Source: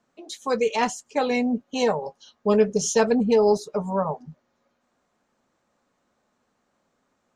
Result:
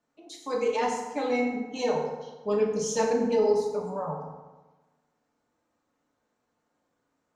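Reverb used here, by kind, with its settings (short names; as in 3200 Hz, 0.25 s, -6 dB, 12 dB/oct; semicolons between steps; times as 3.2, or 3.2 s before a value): FDN reverb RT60 1.2 s, low-frequency decay 1.05×, high-frequency decay 0.6×, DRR -2 dB; gain -10 dB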